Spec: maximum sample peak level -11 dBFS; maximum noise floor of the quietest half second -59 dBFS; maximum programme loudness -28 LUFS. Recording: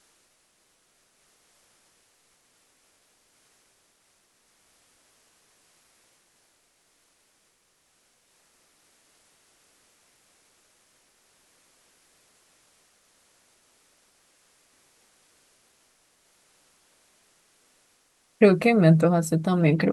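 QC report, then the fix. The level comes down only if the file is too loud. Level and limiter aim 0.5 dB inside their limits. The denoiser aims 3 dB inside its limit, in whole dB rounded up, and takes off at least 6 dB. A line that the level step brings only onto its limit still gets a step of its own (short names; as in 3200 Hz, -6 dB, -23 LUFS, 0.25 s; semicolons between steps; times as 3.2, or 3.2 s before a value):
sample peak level -4.5 dBFS: fail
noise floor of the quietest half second -67 dBFS: OK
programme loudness -20.0 LUFS: fail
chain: gain -8.5 dB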